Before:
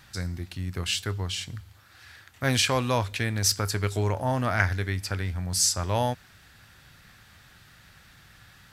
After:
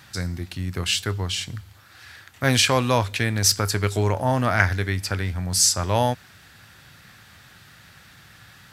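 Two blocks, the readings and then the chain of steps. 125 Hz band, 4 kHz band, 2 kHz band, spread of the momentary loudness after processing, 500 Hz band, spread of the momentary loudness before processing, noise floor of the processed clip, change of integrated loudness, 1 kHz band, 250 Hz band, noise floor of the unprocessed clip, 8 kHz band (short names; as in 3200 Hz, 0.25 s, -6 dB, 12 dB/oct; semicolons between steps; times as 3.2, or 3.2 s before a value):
+4.0 dB, +5.0 dB, +5.0 dB, 12 LU, +5.0 dB, 11 LU, -50 dBFS, +4.5 dB, +5.0 dB, +5.0 dB, -55 dBFS, +5.0 dB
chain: HPF 77 Hz; gain +5 dB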